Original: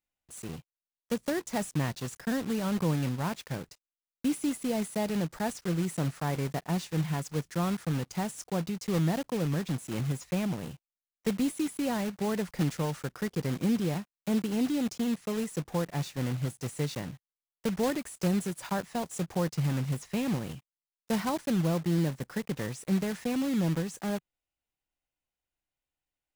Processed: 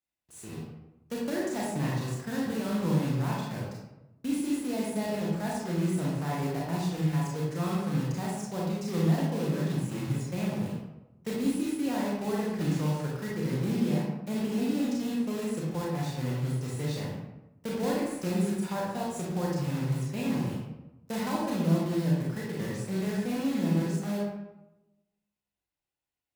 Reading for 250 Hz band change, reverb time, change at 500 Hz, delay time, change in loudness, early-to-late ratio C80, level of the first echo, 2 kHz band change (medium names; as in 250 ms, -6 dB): +1.0 dB, 1.0 s, +0.5 dB, no echo, +1.0 dB, 3.5 dB, no echo, -0.5 dB